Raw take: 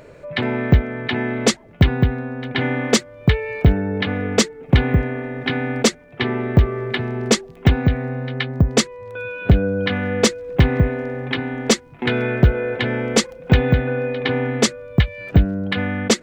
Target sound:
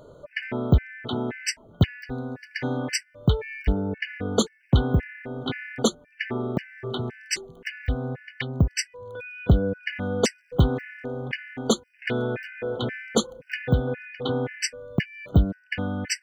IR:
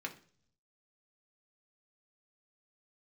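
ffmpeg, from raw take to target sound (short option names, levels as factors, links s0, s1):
-filter_complex "[0:a]asettb=1/sr,asplit=3[s0][s1][s2];[s0]atrim=end=2.014[s3];[s1]atrim=start=2.01:end=2.77,asetpts=PTS-STARTPTS,afade=t=in:d=0.004:c=qsin,afade=t=out:st=0.756:d=0.004:c=qsin,highshelf=f=3600:t=q:w=3:g=6.5[s4];[s2]atrim=start=2.766[s5];[s3][s4]acrossfade=d=0.004:c1=hsin:c2=qsin[s6];[s6][s5]acrossfade=d=0.004:c1=qsin:c2=hsin,afftfilt=real='re*gt(sin(2*PI*1.9*pts/sr)*(1-2*mod(floor(b*sr/1024/1500),2)),0)':imag='im*gt(sin(2*PI*1.9*pts/sr)*(1-2*mod(floor(b*sr/1024/1500),2)),0)':win_size=1024:overlap=0.75,volume=0.596"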